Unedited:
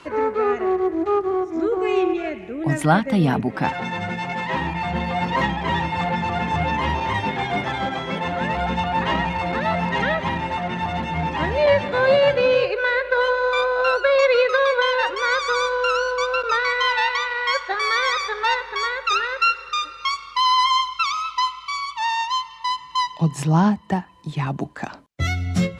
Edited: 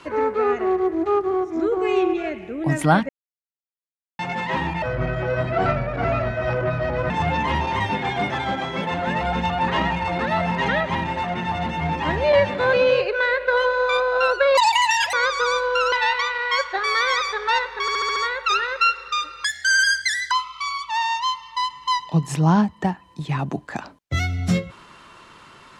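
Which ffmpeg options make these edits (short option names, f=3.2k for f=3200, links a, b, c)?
-filter_complex "[0:a]asplit=16[a][b][c][d][e][f][g][h][i][j][k][l][m][n][o][p];[a]atrim=end=3.09,asetpts=PTS-STARTPTS,afade=t=out:st=3.086:d=0.004:c=hsin[q];[b]atrim=start=3.09:end=4.19,asetpts=PTS-STARTPTS,volume=0[r];[c]atrim=start=4.19:end=4.824,asetpts=PTS-STARTPTS,afade=t=in:d=0.004:c=hsin[s];[d]atrim=start=4.82:end=6.44,asetpts=PTS-STARTPTS,asetrate=31311,aresample=44100[t];[e]atrim=start=6.436:end=12.072[u];[f]atrim=start=12.368:end=14.214[v];[g]atrim=start=14.21:end=15.22,asetpts=PTS-STARTPTS,asetrate=79380,aresample=44100[w];[h]atrim=start=15.216:end=16.012[x];[i]atrim=start=16.878:end=18.842[y];[j]atrim=start=18.768:end=18.842[z];[k]atrim=start=18.768:end=18.842[aa];[l]atrim=start=18.768:end=18.842[ab];[m]atrim=start=18.768:end=18.842[ac];[n]atrim=start=18.768:end=20.054[ad];[o]atrim=start=20.05:end=21.39,asetpts=PTS-STARTPTS,asetrate=67914,aresample=44100[ae];[p]atrim=start=21.386[af];[q][r][s]concat=n=3:v=0:a=1[ag];[ag][t]acrossfade=d=0.004:c1=hsin:c2=hsin[ah];[ah][u]acrossfade=d=0.004:c1=hsin:c2=hsin[ai];[ai][v]acrossfade=d=0.004:c1=hsin:c2=hsin[aj];[aj][w]acrossfade=d=0.004:c1=hsin:c2=hsin[ak];[ak][x]acrossfade=d=0.004:c1=hsin:c2=hsin[al];[al][y]acrossfade=d=0.004:c1=hsin:c2=hsin[am];[am][z]acrossfade=d=0.004:c1=hsin:c2=hsin[an];[an][aa]acrossfade=d=0.004:c1=hsin:c2=hsin[ao];[ao][ab]acrossfade=d=0.004:c1=hsin:c2=hsin[ap];[ap][ac]acrossfade=d=0.004:c1=hsin:c2=hsin[aq];[aq][ad]acrossfade=d=0.004:c1=hsin:c2=hsin[ar];[ar][ae]acrossfade=d=0.004:c1=hsin:c2=hsin[as];[as][af]acrossfade=d=0.004:c1=hsin:c2=hsin"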